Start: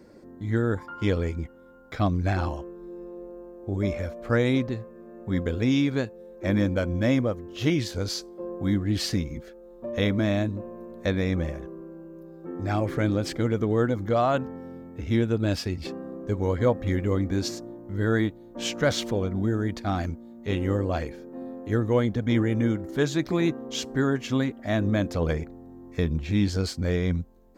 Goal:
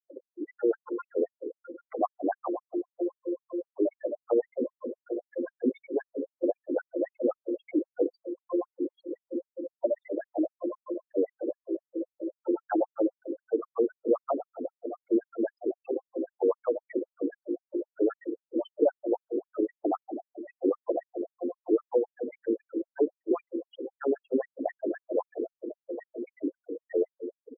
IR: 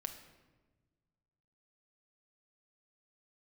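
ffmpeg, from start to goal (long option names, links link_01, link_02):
-filter_complex "[0:a]bass=frequency=250:gain=-12,treble=frequency=4000:gain=14,asplit=2[link_01][link_02];[1:a]atrim=start_sample=2205[link_03];[link_02][link_03]afir=irnorm=-1:irlink=0,volume=6.5dB[link_04];[link_01][link_04]amix=inputs=2:normalize=0,acompressor=threshold=-28dB:ratio=1.5,aecho=1:1:721|1442|2163|2884|3605:0.112|0.0651|0.0377|0.0219|0.0127,acrossover=split=980|2100[link_05][link_06][link_07];[link_05]acompressor=threshold=-23dB:ratio=4[link_08];[link_06]acompressor=threshold=-52dB:ratio=4[link_09];[link_07]acompressor=threshold=-58dB:ratio=4[link_10];[link_08][link_09][link_10]amix=inputs=3:normalize=0,adynamicequalizer=threshold=0.0126:dfrequency=590:dqfactor=1.8:tfrequency=590:tqfactor=1.8:attack=5:release=100:ratio=0.375:range=2.5:mode=cutabove:tftype=bell,afftfilt=real='re*gte(hypot(re,im),0.0224)':imag='im*gte(hypot(re,im),0.0224)':win_size=1024:overlap=0.75,afftdn=noise_reduction=24:noise_floor=-41,afftfilt=real='re*between(b*sr/1024,340*pow(5000/340,0.5+0.5*sin(2*PI*3.8*pts/sr))/1.41,340*pow(5000/340,0.5+0.5*sin(2*PI*3.8*pts/sr))*1.41)':imag='im*between(b*sr/1024,340*pow(5000/340,0.5+0.5*sin(2*PI*3.8*pts/sr))/1.41,340*pow(5000/340,0.5+0.5*sin(2*PI*3.8*pts/sr))*1.41)':win_size=1024:overlap=0.75,volume=7dB"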